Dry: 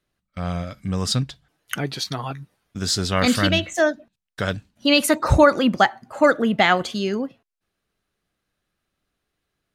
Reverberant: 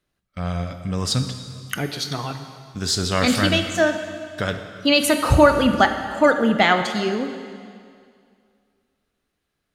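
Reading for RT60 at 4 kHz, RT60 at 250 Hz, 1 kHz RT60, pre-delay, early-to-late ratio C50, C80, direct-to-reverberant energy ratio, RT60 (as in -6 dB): 2.1 s, 2.2 s, 2.2 s, 7 ms, 8.0 dB, 9.0 dB, 7.0 dB, 2.2 s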